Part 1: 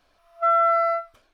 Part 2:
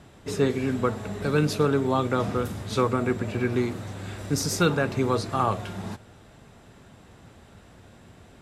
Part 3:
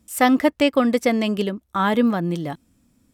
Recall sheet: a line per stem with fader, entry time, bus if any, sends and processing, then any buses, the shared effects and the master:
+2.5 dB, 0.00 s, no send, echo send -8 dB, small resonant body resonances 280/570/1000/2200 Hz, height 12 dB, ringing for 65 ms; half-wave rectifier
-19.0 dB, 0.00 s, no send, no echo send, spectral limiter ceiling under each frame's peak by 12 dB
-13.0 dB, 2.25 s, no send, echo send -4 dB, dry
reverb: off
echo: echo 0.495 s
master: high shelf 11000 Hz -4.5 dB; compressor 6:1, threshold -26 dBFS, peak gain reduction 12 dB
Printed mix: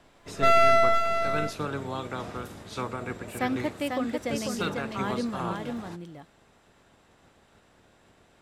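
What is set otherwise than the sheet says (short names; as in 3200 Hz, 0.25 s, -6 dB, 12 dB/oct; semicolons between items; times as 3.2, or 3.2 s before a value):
stem 2 -19.0 dB -> -9.5 dB; stem 3: entry 2.25 s -> 3.20 s; master: missing compressor 6:1, threshold -26 dBFS, peak gain reduction 12 dB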